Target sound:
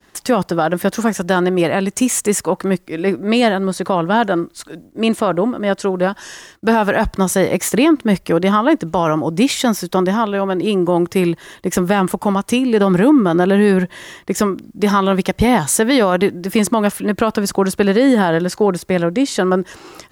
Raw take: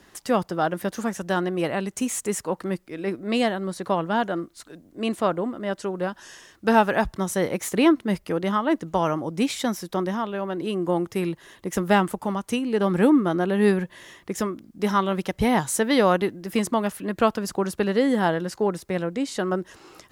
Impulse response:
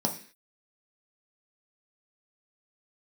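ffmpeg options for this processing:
-af "agate=range=-33dB:threshold=-47dB:ratio=3:detection=peak,alimiter=level_in=14.5dB:limit=-1dB:release=50:level=0:latency=1,volume=-4dB"

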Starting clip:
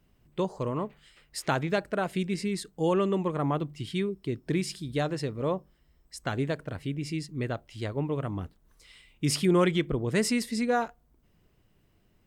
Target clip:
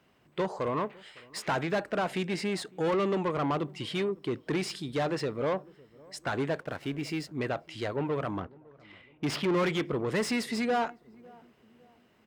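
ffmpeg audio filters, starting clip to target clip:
ffmpeg -i in.wav -filter_complex "[0:a]asettb=1/sr,asplit=3[link_01][link_02][link_03];[link_01]atrim=end=8.404[link_04];[link_02]atrim=start=8.4:end=9.64,asetpts=PTS-STARTPTS,afade=type=in:duration=0.004:curve=qsin,afade=type=out:start_time=1.236:duration=0.004:curve=qsin,adynamicsmooth=sensitivity=7:basefreq=1700[link_05];[link_03]atrim=start=9.636[link_06];[link_04][link_05]acrossfade=duration=0.004:curve1=hsin:curve2=qsin[link_07];[link_07][link_06]acrossfade=duration=0.004:curve1=qsin:curve2=hsin,asplit=2[link_08][link_09];[link_09]highpass=frequency=720:poles=1,volume=25dB,asoftclip=type=tanh:threshold=-11.5dB[link_10];[link_08][link_10]amix=inputs=2:normalize=0,lowpass=frequency=2200:poles=1,volume=-6dB,highpass=60,asettb=1/sr,asplit=3[link_11][link_12][link_13];[link_11]atrim=end=6.584[link_14];[link_12]atrim=start=6.58:end=7.31,asetpts=PTS-STARTPTS,afade=type=in:duration=0.004:curve=qsin,afade=type=out:start_time=0.726:duration=0.004:curve=qsin,aeval=exprs='sgn(val(0))*max(abs(val(0))-0.00668,0)':channel_layout=same[link_15];[link_13]atrim=start=7.306[link_16];[link_14][link_15]acrossfade=duration=0.004:curve1=hsin:curve2=qsin[link_17];[link_17][link_16]acrossfade=duration=0.004:curve1=qsin:curve2=hsin,asplit=2[link_18][link_19];[link_19]adelay=556,lowpass=frequency=820:poles=1,volume=-23dB,asplit=2[link_20][link_21];[link_21]adelay=556,lowpass=frequency=820:poles=1,volume=0.48,asplit=2[link_22][link_23];[link_23]adelay=556,lowpass=frequency=820:poles=1,volume=0.48[link_24];[link_18][link_20][link_22][link_24]amix=inputs=4:normalize=0,volume=-8dB" out.wav

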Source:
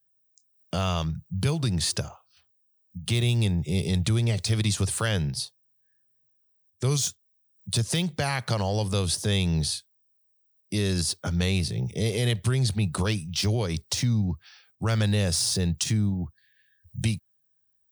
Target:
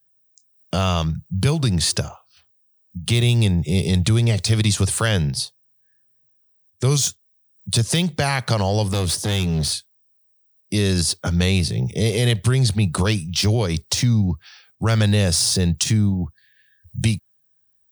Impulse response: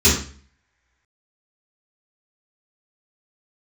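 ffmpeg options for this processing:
-filter_complex "[0:a]asettb=1/sr,asplit=3[link_01][link_02][link_03];[link_01]atrim=end=8.874[link_04];[link_02]atrim=start=8.87:end=9.73,asetpts=PTS-STARTPTS,afade=type=in:duration=0.004:curve=qsin,afade=type=out:start_time=0.856:duration=0.004:curve=qsin,asoftclip=type=hard:threshold=-24.5dB[link_05];[link_03]atrim=start=9.726[link_06];[link_04][link_05]acrossfade=duration=0.004:curve1=hsin:curve2=qsin[link_07];[link_07][link_06]acrossfade=duration=0.004:curve1=qsin:curve2=hsin,volume=6.5dB"

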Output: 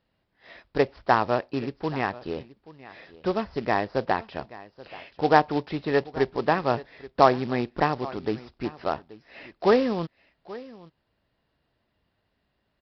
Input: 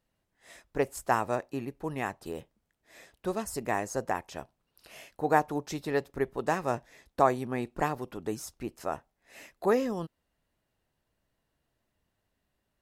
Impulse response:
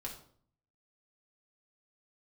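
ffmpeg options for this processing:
-filter_complex "[0:a]highpass=frequency=43:poles=1,aecho=1:1:830:0.112,acrossover=split=3500[link_01][link_02];[link_02]acompressor=threshold=-58dB:ratio=4:attack=1:release=60[link_03];[link_01][link_03]amix=inputs=2:normalize=0,aresample=11025,acrusher=bits=4:mode=log:mix=0:aa=0.000001,aresample=44100,volume=6dB"

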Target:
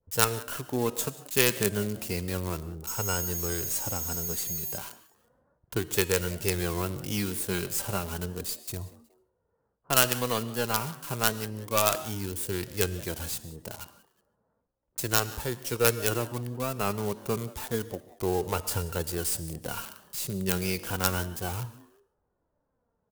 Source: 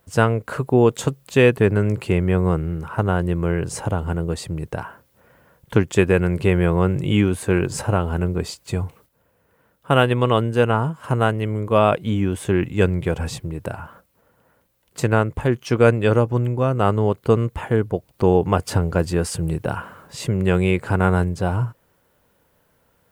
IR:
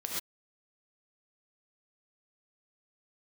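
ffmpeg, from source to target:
-filter_complex "[0:a]lowshelf=frequency=110:gain=4.5,asettb=1/sr,asplit=3[link_01][link_02][link_03];[link_01]atrim=end=2.874[link_04];[link_02]atrim=start=2.87:end=4.78,asetpts=PTS-STARTPTS,afade=type=in:duration=0.004:curve=qsin,afade=type=out:start_time=1.906:duration=0.004:curve=qsin,aeval=exprs='val(0)+0.0224*sin(2*PI*6600*n/s)':channel_layout=same[link_05];[link_03]atrim=start=4.776[link_06];[link_04][link_05]acrossfade=duration=0.004:curve1=hsin:curve2=qsin[link_07];[link_07][link_06]acrossfade=duration=0.004:curve1=qsin:curve2=hsin,adynamicequalizer=threshold=0.0282:dfrequency=1400:dqfactor=1.1:tfrequency=1400:tqfactor=1.1:attack=5:release=100:ratio=0.375:range=2:mode=boostabove:tftype=bell,flanger=delay=2.1:depth=3:regen=47:speed=0.32:shape=sinusoidal,acrossover=split=280|1100[link_08][link_09][link_10];[link_10]acrusher=bits=4:dc=4:mix=0:aa=0.000001[link_11];[link_08][link_09][link_11]amix=inputs=3:normalize=0,asplit=3[link_12][link_13][link_14];[link_13]adelay=183,afreqshift=140,volume=-21.5dB[link_15];[link_14]adelay=366,afreqshift=280,volume=-30.9dB[link_16];[link_12][link_15][link_16]amix=inputs=3:normalize=0,asplit=2[link_17][link_18];[1:a]atrim=start_sample=2205,asetrate=39249,aresample=44100[link_19];[link_18][link_19]afir=irnorm=-1:irlink=0,volume=-19dB[link_20];[link_17][link_20]amix=inputs=2:normalize=0,crystalizer=i=7.5:c=0,bandreject=frequency=315.5:width_type=h:width=4,bandreject=frequency=631:width_type=h:width=4,bandreject=frequency=946.5:width_type=h:width=4,bandreject=frequency=1262:width_type=h:width=4,bandreject=frequency=1577.5:width_type=h:width=4,bandreject=frequency=1893:width_type=h:width=4,bandreject=frequency=2208.5:width_type=h:width=4,bandreject=frequency=2524:width_type=h:width=4,bandreject=frequency=2839.5:width_type=h:width=4,bandreject=frequency=3155:width_type=h:width=4,bandreject=frequency=3470.5:width_type=h:width=4,bandreject=frequency=3786:width_type=h:width=4,bandreject=frequency=4101.5:width_type=h:width=4,bandreject=frequency=4417:width_type=h:width=4,bandreject=frequency=4732.5:width_type=h:width=4,bandreject=frequency=5048:width_type=h:width=4,bandreject=frequency=5363.5:width_type=h:width=4,bandreject=frequency=5679:width_type=h:width=4,bandreject=frequency=5994.5:width_type=h:width=4,bandreject=frequency=6310:width_type=h:width=4,bandreject=frequency=6625.5:width_type=h:width=4,bandreject=frequency=6941:width_type=h:width=4,bandreject=frequency=7256.5:width_type=h:width=4,bandreject=frequency=7572:width_type=h:width=4,bandreject=frequency=7887.5:width_type=h:width=4,bandreject=frequency=8203:width_type=h:width=4,bandreject=frequency=8518.5:width_type=h:width=4,bandreject=frequency=8834:width_type=h:width=4,bandreject=frequency=9149.5:width_type=h:width=4,bandreject=frequency=9465:width_type=h:width=4,bandreject=frequency=9780.5:width_type=h:width=4,bandreject=frequency=10096:width_type=h:width=4,bandreject=frequency=10411.5:width_type=h:width=4,bandreject=frequency=10727:width_type=h:width=4,volume=-11dB"

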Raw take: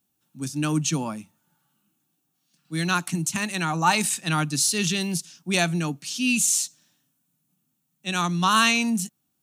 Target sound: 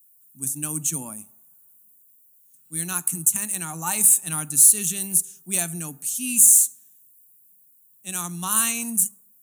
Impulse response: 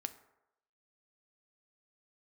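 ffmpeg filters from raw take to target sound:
-filter_complex "[0:a]aexciter=amount=9.8:drive=9.9:freq=7500,asplit=2[link_01][link_02];[1:a]atrim=start_sample=2205,asetrate=42336,aresample=44100,lowshelf=frequency=260:gain=9.5[link_03];[link_02][link_03]afir=irnorm=-1:irlink=0,volume=-4.5dB[link_04];[link_01][link_04]amix=inputs=2:normalize=0,volume=-13.5dB"

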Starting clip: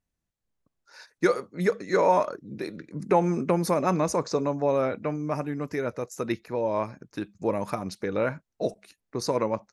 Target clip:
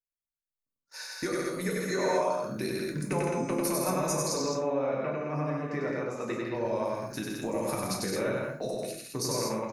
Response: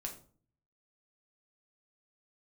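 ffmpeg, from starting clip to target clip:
-filter_complex "[0:a]agate=range=-30dB:threshold=-54dB:ratio=16:detection=peak,aemphasis=mode=production:type=75fm,acompressor=threshold=-34dB:ratio=4,asettb=1/sr,asplit=3[link_01][link_02][link_03];[link_01]atrim=end=4.384[link_04];[link_02]atrim=start=4.38:end=6.55,asetpts=PTS-STARTPTS,afade=type=in:duration=0.004:curve=qsin,afade=type=out:start_time=2.166:duration=0.004:curve=qsin,highpass=140,lowpass=2700[link_05];[link_03]atrim=start=6.546[link_06];[link_04][link_05]acrossfade=duration=0.004:curve1=hsin:curve2=qsin[link_07];[link_07][link_06]acrossfade=duration=0.004:curve1=qsin:curve2=hsin,aecho=1:1:96.21|163.3|215.7:0.794|0.562|0.562[link_08];[1:a]atrim=start_sample=2205[link_09];[link_08][link_09]afir=irnorm=-1:irlink=0,volume=4dB"

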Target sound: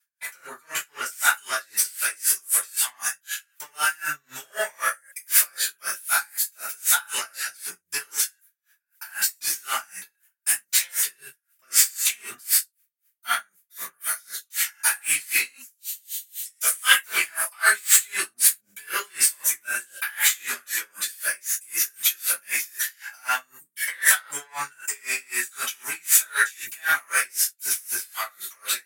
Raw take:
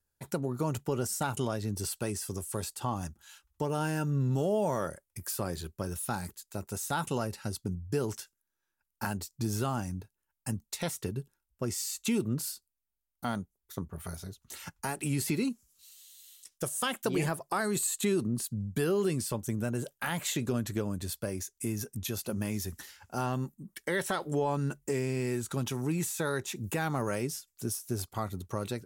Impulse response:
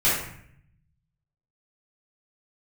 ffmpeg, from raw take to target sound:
-filter_complex "[0:a]asetnsamples=nb_out_samples=441:pad=0,asendcmd='1.11 equalizer g 14',equalizer=frequency=14000:width_type=o:width=1.7:gain=5,aeval=exprs='0.398*sin(PI/2*3.98*val(0)/0.398)':channel_layout=same,highpass=frequency=1700:width_type=q:width=2.4[link_01];[1:a]atrim=start_sample=2205,atrim=end_sample=6174[link_02];[link_01][link_02]afir=irnorm=-1:irlink=0,aeval=exprs='val(0)*pow(10,-31*(0.5-0.5*cos(2*PI*3.9*n/s))/20)':channel_layout=same,volume=-14dB"

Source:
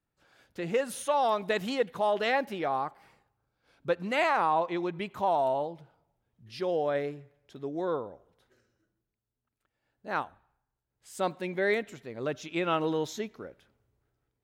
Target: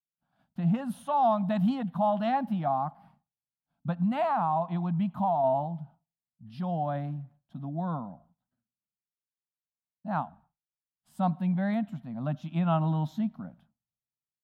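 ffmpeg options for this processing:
ffmpeg -i in.wav -filter_complex "[0:a]agate=range=-33dB:threshold=-55dB:ratio=3:detection=peak,firequalizer=gain_entry='entry(100,0);entry(160,15);entry(240,10);entry(410,-28);entry(670,5);entry(2100,-15);entry(3100,-8);entry(6500,-20);entry(11000,-10)':delay=0.05:min_phase=1,asettb=1/sr,asplit=3[link_01][link_02][link_03];[link_01]atrim=end=2.714[link_04];[link_02]atrim=start=2.71:end=5.44,asetpts=PTS-STARTPTS,afade=type=in:duration=0.004:curve=qsin,afade=type=out:start_time=2.726:duration=0.004:curve=qsin,acompressor=threshold=-23dB:ratio=6[link_05];[link_03]atrim=start=5.436[link_06];[link_04][link_05]acrossfade=duration=0.004:curve1=hsin:curve2=qsin[link_07];[link_07][link_06]acrossfade=duration=0.004:curve1=qsin:curve2=hsin" out.wav

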